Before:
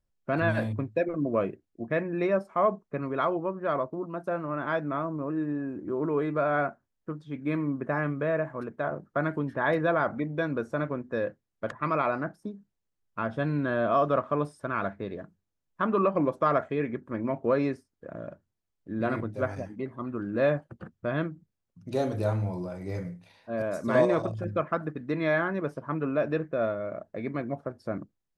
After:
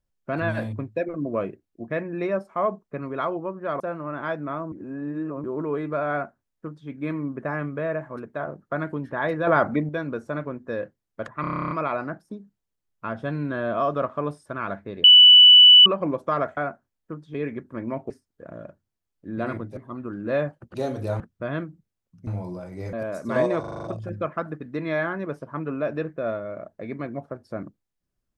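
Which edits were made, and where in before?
0:03.80–0:04.24: remove
0:05.16–0:05.88: reverse
0:06.55–0:07.32: duplicate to 0:16.71
0:09.91–0:10.33: clip gain +7 dB
0:11.85: stutter 0.03 s, 11 plays
0:15.18–0:16.00: beep over 2,970 Hz −7 dBFS
0:17.47–0:17.73: remove
0:19.40–0:19.86: remove
0:21.90–0:22.36: move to 0:20.83
0:23.02–0:23.52: remove
0:24.19: stutter 0.04 s, 7 plays

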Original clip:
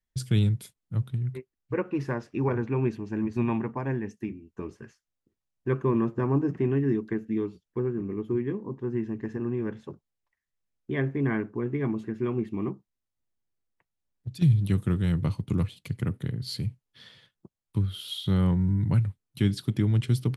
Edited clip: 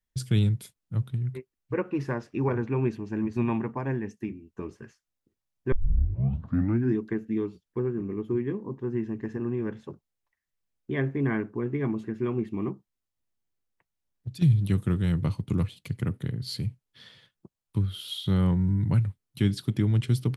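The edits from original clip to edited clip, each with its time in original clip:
0:05.72: tape start 1.24 s

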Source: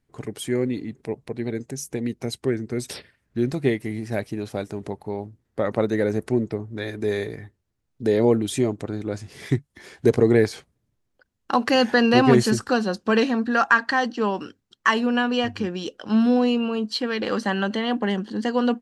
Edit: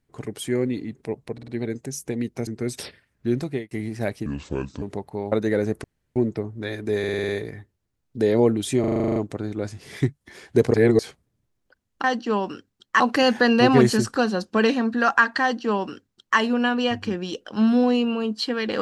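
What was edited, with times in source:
0:01.33: stutter 0.05 s, 4 plays
0:02.32–0:02.58: remove
0:03.49–0:03.82: fade out
0:04.37–0:04.75: play speed 68%
0:05.25–0:05.79: remove
0:06.31: splice in room tone 0.32 s
0:07.14: stutter 0.05 s, 7 plays
0:08.65: stutter 0.04 s, 10 plays
0:10.23–0:10.48: reverse
0:13.95–0:14.91: duplicate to 0:11.53

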